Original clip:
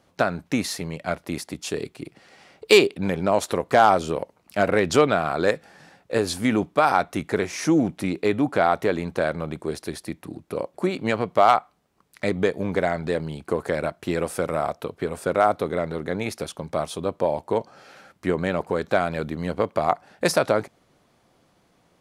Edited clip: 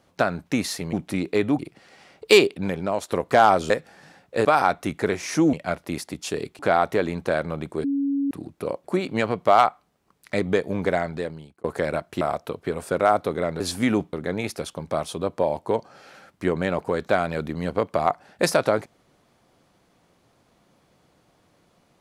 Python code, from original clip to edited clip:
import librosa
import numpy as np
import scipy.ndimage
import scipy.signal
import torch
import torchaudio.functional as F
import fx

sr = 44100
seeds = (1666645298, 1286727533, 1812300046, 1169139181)

y = fx.edit(x, sr, fx.swap(start_s=0.93, length_s=1.06, other_s=7.83, other_length_s=0.66),
    fx.fade_out_to(start_s=2.87, length_s=0.65, floor_db=-8.0),
    fx.cut(start_s=4.1, length_s=1.37),
    fx.move(start_s=6.22, length_s=0.53, to_s=15.95),
    fx.bleep(start_s=9.74, length_s=0.47, hz=279.0, db=-20.5),
    fx.fade_out_span(start_s=12.85, length_s=0.69),
    fx.cut(start_s=14.11, length_s=0.45), tone=tone)